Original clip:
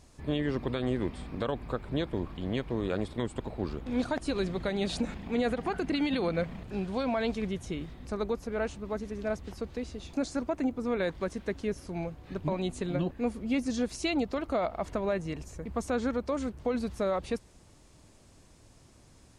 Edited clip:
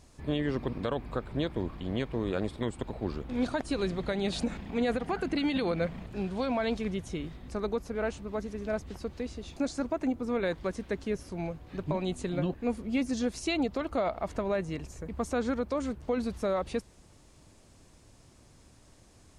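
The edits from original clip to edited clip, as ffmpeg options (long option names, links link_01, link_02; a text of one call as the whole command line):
ffmpeg -i in.wav -filter_complex "[0:a]asplit=2[link_01][link_02];[link_01]atrim=end=0.732[link_03];[link_02]atrim=start=1.298[link_04];[link_03][link_04]acrossfade=duration=0.004:curve1=hsin:curve2=hsin" out.wav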